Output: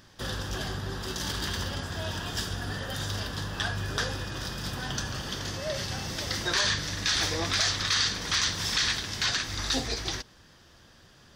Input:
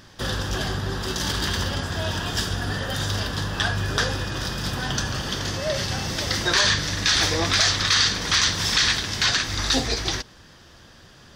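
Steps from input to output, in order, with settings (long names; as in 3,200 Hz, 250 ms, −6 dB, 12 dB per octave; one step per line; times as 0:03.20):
high-shelf EQ 9,800 Hz +3.5 dB
level −7 dB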